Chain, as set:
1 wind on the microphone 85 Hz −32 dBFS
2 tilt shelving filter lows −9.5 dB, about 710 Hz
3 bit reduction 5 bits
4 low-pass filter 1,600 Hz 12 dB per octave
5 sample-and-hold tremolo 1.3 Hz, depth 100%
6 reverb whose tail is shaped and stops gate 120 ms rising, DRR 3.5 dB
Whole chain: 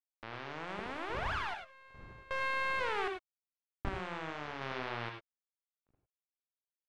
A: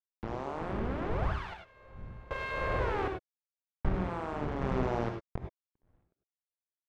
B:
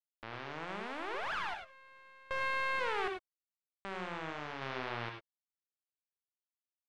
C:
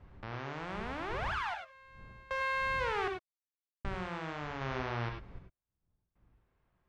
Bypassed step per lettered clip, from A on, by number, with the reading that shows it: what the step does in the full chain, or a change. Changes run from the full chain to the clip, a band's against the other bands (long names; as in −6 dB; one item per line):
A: 2, 4 kHz band −11.5 dB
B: 1, 125 Hz band −3.5 dB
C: 3, distortion level −6 dB